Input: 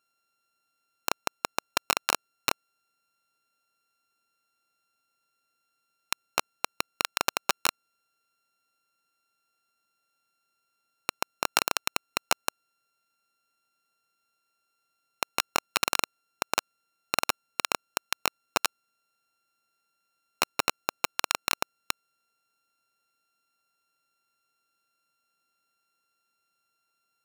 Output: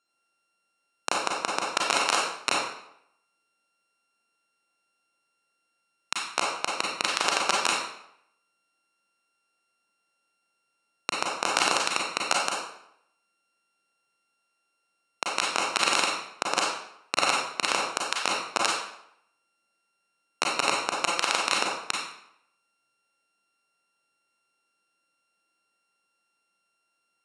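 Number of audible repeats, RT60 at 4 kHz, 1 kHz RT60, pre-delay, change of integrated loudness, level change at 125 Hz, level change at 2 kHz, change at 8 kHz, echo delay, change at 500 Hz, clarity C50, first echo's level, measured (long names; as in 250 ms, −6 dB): no echo audible, 0.60 s, 0.75 s, 31 ms, +3.5 dB, +0.5 dB, +4.0 dB, +3.0 dB, no echo audible, +4.5 dB, 1.0 dB, no echo audible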